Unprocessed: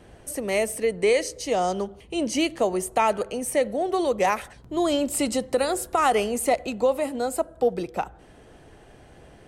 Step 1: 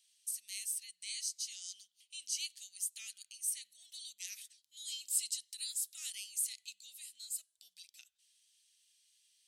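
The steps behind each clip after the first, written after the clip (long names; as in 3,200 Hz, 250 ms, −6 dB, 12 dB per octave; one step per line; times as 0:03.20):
inverse Chebyshev high-pass filter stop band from 1,100 Hz, stop band 60 dB
level −4 dB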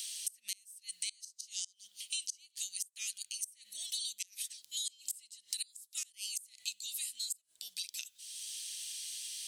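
parametric band 1,100 Hz −7 dB 1.8 octaves
gate with flip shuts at −31 dBFS, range −29 dB
multiband upward and downward compressor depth 100%
level +10 dB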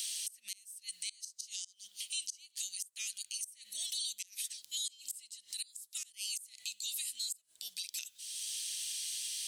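brickwall limiter −30 dBFS, peak gain reduction 11.5 dB
level +3.5 dB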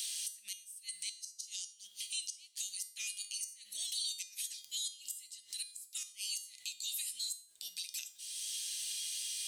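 tuned comb filter 410 Hz, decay 0.46 s, mix 80%
level +11.5 dB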